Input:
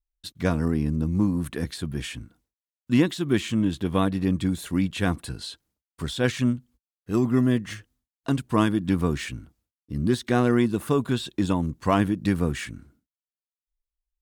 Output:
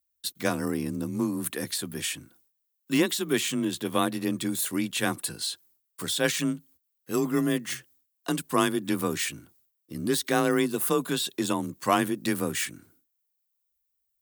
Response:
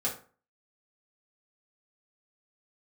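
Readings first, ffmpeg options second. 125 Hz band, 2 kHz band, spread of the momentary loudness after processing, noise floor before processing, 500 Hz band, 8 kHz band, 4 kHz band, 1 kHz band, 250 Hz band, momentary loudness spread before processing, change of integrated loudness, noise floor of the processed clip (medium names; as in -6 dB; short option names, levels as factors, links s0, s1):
-10.5 dB, +1.5 dB, 8 LU, under -85 dBFS, -1.0 dB, +9.5 dB, +4.0 dB, +0.5 dB, -4.5 dB, 13 LU, -3.0 dB, -78 dBFS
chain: -af "aemphasis=mode=production:type=bsi,afreqshift=26"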